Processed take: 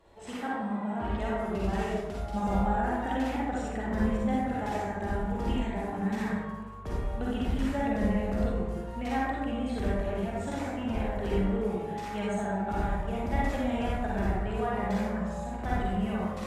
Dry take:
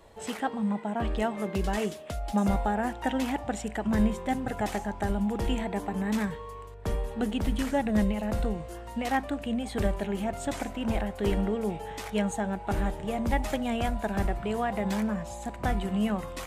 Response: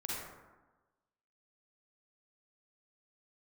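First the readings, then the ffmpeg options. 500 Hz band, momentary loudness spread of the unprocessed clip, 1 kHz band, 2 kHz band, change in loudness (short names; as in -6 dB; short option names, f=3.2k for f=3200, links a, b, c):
-1.0 dB, 7 LU, 0.0 dB, -1.0 dB, -1.0 dB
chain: -filter_complex "[0:a]highshelf=f=7.3k:g=-9.5[a];[1:a]atrim=start_sample=2205[b];[a][b]afir=irnorm=-1:irlink=0,volume=-3dB"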